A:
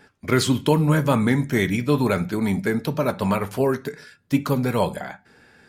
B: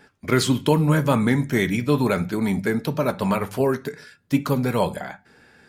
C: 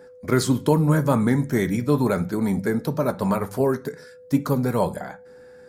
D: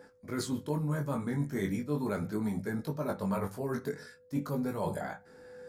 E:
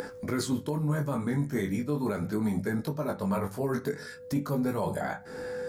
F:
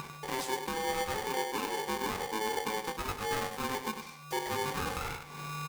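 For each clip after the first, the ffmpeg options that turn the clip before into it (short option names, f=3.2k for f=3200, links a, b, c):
-af "bandreject=f=50:t=h:w=6,bandreject=f=100:t=h:w=6"
-af "equalizer=f=2.8k:t=o:w=0.92:g=-12,aeval=exprs='val(0)+0.00631*sin(2*PI*500*n/s)':c=same"
-af "areverse,acompressor=threshold=-27dB:ratio=6,areverse,flanger=delay=19:depth=2.2:speed=0.39"
-af "acompressor=mode=upward:threshold=-35dB:ratio=2.5,alimiter=level_in=2.5dB:limit=-24dB:level=0:latency=1:release=287,volume=-2.5dB,volume=7dB"
-af "aecho=1:1:98:0.398,aeval=exprs='val(0)*sgn(sin(2*PI*650*n/s))':c=same,volume=-5.5dB"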